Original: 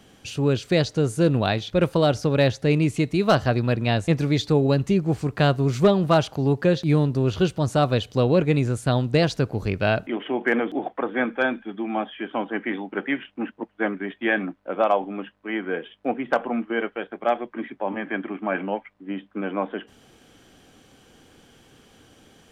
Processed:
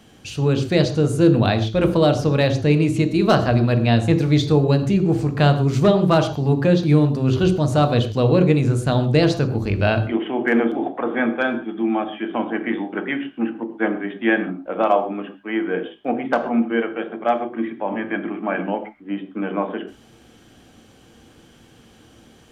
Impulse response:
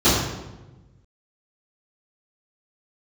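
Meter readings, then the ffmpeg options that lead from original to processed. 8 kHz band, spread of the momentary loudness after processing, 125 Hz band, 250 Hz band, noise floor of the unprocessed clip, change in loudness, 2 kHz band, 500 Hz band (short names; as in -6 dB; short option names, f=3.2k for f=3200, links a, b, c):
n/a, 10 LU, +4.5 dB, +5.0 dB, -56 dBFS, +4.0 dB, +2.0 dB, +2.5 dB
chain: -filter_complex "[0:a]asplit=2[a][b];[1:a]atrim=start_sample=2205,atrim=end_sample=6615[c];[b][c]afir=irnorm=-1:irlink=0,volume=-29dB[d];[a][d]amix=inputs=2:normalize=0,volume=1.5dB"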